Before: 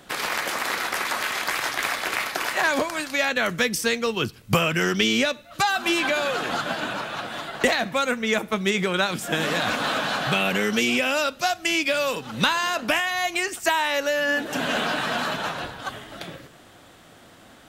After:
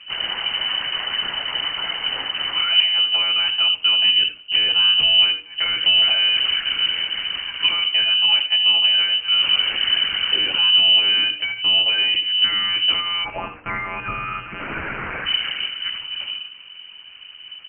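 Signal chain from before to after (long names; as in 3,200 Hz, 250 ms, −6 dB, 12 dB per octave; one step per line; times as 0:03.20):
soft clipping −23.5 dBFS, distortion −9 dB
low shelf with overshoot 170 Hz −12.5 dB, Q 1.5
one-pitch LPC vocoder at 8 kHz 180 Hz
far-end echo of a speakerphone 80 ms, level −10 dB
flanger 0.86 Hz, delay 2.7 ms, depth 9.6 ms, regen −88%
spectral tilt −2.5 dB per octave, from 0:13.24 +4 dB per octave, from 0:15.25 −2.5 dB per octave
voice inversion scrambler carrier 3,000 Hz
mains-hum notches 60/120/180/240/300/360/420/480 Hz
level +4.5 dB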